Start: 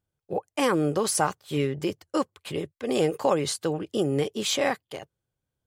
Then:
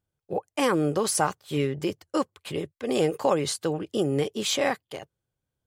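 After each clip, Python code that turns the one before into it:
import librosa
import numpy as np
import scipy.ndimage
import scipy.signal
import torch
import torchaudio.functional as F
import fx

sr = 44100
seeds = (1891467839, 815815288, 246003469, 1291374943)

y = x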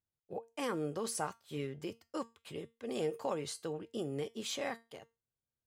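y = fx.comb_fb(x, sr, f0_hz=230.0, decay_s=0.26, harmonics='all', damping=0.0, mix_pct=60)
y = y * 10.0 ** (-6.5 / 20.0)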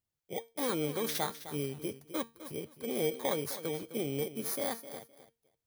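y = fx.bit_reversed(x, sr, seeds[0], block=16)
y = fx.echo_feedback(y, sr, ms=258, feedback_pct=20, wet_db=-13.0)
y = y * 10.0 ** (3.5 / 20.0)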